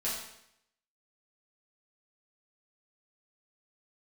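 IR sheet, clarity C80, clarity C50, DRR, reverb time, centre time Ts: 5.0 dB, 2.0 dB, −8.5 dB, 0.75 s, 53 ms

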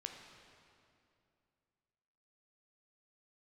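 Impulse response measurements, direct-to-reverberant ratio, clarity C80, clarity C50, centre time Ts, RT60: 3.0 dB, 5.5 dB, 4.5 dB, 62 ms, 2.6 s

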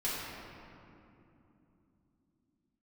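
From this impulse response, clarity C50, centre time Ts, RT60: −2.5 dB, 153 ms, 3.0 s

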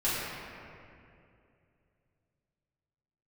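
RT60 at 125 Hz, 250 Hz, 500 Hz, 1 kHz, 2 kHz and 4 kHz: 3.6, 3.0, 2.8, 2.3, 2.2, 1.5 seconds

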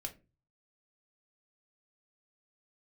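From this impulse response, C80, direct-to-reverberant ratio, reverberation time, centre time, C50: 22.5 dB, 3.5 dB, 0.30 s, 7 ms, 15.5 dB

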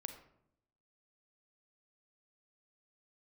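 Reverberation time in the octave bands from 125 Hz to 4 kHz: 1.0, 0.95, 0.80, 0.70, 0.55, 0.40 seconds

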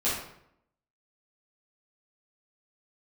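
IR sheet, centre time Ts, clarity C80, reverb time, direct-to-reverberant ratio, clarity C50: 52 ms, 5.5 dB, 0.75 s, −11.0 dB, 1.5 dB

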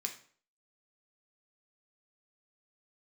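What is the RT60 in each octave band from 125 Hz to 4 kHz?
0.50, 0.50, 0.50, 0.50, 0.45, 0.40 seconds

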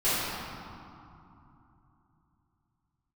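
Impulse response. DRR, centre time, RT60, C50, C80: −15.5 dB, 186 ms, 2.9 s, −5.0 dB, −2.5 dB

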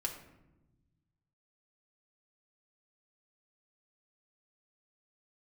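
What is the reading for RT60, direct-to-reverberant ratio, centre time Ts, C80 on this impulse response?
1.0 s, 0.0 dB, 20 ms, 10.5 dB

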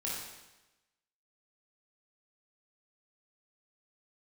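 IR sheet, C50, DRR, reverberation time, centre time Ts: −1.0 dB, −6.0 dB, 1.0 s, 74 ms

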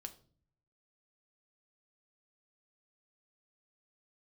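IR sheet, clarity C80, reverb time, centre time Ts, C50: 19.5 dB, 0.45 s, 7 ms, 15.5 dB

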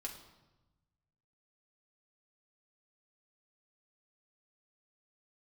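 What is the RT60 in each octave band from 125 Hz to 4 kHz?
1.9, 1.4, 1.1, 1.1, 0.85, 0.85 seconds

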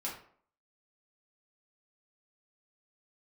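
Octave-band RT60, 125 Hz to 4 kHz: 0.45, 0.55, 0.55, 0.55, 0.45, 0.35 seconds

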